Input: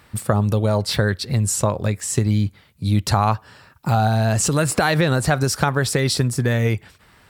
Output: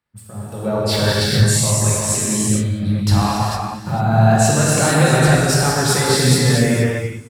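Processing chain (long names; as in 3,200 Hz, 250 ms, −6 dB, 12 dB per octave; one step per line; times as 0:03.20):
delay that plays each chunk backwards 367 ms, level −12 dB
reverb reduction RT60 1 s
in parallel at −1 dB: downward compressor, threshold −31 dBFS, peak gain reduction 16.5 dB
on the sum: brickwall limiter −13 dBFS, peak gain reduction 10 dB
automatic gain control gain up to 9 dB
on a send: single-tap delay 208 ms −23 dB
on the sum: reverb whose tail is shaped and stops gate 490 ms flat, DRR −7 dB
multiband upward and downward expander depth 70%
level −9 dB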